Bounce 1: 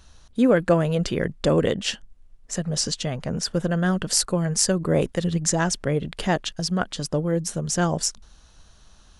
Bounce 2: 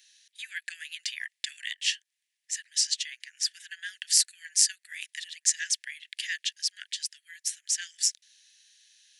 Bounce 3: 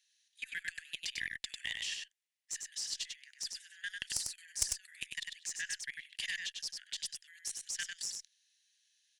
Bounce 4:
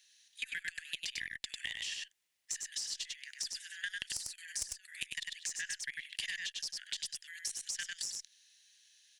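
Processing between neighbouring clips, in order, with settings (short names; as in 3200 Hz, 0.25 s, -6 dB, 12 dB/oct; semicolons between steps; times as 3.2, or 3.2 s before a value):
steep high-pass 1700 Hz 96 dB/oct
level quantiser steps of 19 dB; tube stage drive 21 dB, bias 0.35; echo 98 ms -4.5 dB; gain +1 dB
compressor 12:1, threshold -45 dBFS, peak gain reduction 19.5 dB; gain +9 dB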